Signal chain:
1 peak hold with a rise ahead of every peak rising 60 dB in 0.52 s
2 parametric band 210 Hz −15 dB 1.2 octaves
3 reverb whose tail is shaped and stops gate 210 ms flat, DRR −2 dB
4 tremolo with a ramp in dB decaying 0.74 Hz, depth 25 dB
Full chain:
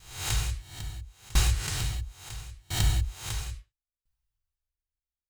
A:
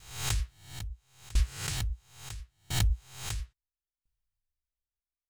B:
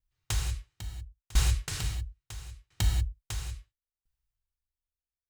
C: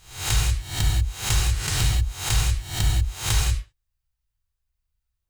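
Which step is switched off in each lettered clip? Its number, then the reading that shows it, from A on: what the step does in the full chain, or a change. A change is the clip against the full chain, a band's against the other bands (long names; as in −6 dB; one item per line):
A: 3, change in integrated loudness −4.0 LU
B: 1, 125 Hz band +2.5 dB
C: 4, change in momentary loudness spread −12 LU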